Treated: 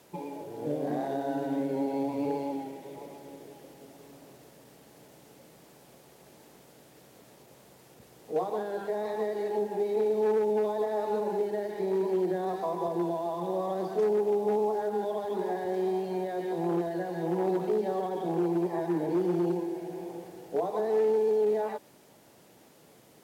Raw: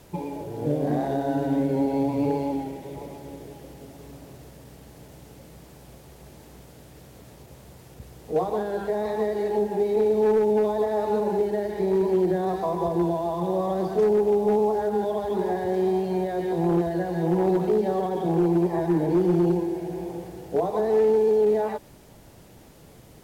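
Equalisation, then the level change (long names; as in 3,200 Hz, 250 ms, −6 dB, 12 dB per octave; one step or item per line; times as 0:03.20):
Bessel high-pass filter 250 Hz, order 2
−4.5 dB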